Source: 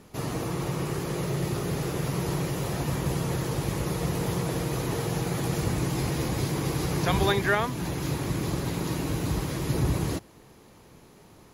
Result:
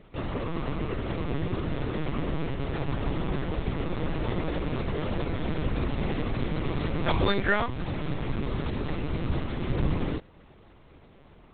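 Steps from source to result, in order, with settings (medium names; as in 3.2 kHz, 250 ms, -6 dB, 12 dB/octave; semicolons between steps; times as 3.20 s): band-stop 800 Hz, Q 12; LPC vocoder at 8 kHz pitch kept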